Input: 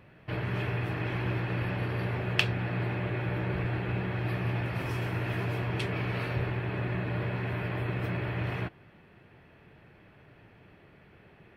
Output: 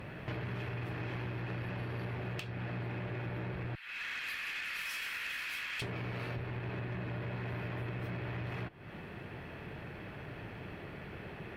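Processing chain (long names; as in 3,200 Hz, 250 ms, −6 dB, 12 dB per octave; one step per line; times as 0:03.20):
0:03.75–0:05.82: Bessel high-pass filter 2,300 Hz, order 6
downward compressor 16 to 1, threshold −45 dBFS, peak gain reduction 26.5 dB
tube saturation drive 43 dB, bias 0.3
level +11.5 dB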